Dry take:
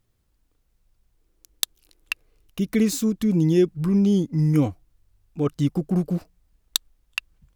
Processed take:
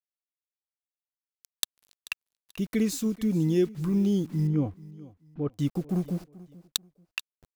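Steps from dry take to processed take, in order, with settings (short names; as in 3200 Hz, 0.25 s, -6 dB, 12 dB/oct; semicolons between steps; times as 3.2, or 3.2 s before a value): bit-crush 8-bit; 4.47–5.54 tape spacing loss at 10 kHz 44 dB; feedback echo 0.436 s, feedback 30%, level -20 dB; gain -5.5 dB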